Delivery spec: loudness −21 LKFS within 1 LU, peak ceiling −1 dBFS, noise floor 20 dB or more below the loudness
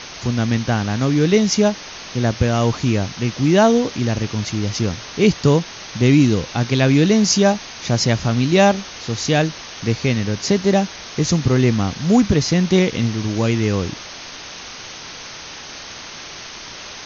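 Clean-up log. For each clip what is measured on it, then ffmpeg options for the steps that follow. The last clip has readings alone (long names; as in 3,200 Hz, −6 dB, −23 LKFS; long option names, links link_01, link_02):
background noise floor −35 dBFS; target noise floor −38 dBFS; integrated loudness −18.0 LKFS; sample peak −3.0 dBFS; target loudness −21.0 LKFS
→ -af "afftdn=noise_reduction=6:noise_floor=-35"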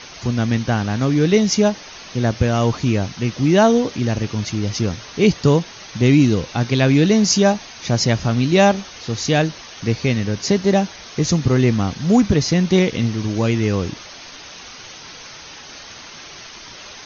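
background noise floor −38 dBFS; integrated loudness −18.0 LKFS; sample peak −3.0 dBFS; target loudness −21.0 LKFS
→ -af "volume=-3dB"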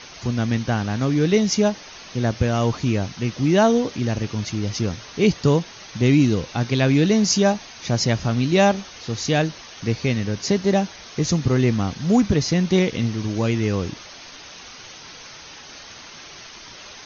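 integrated loudness −21.0 LKFS; sample peak −6.0 dBFS; background noise floor −41 dBFS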